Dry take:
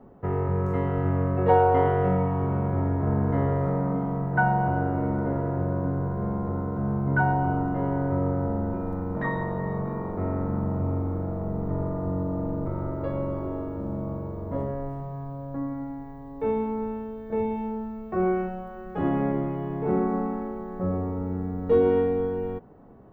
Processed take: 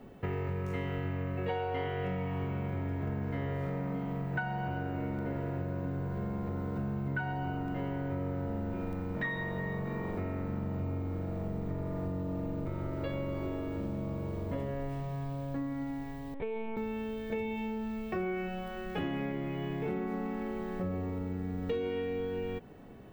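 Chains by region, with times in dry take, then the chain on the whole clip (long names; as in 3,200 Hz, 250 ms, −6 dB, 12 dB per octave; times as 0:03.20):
0:16.34–0:16.77: downward compressor 2 to 1, threshold −31 dBFS + band-pass filter 160–2,800 Hz + linear-prediction vocoder at 8 kHz pitch kept
whole clip: high shelf with overshoot 1,700 Hz +13.5 dB, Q 1.5; notch filter 2,000 Hz, Q 29; downward compressor, threshold −32 dBFS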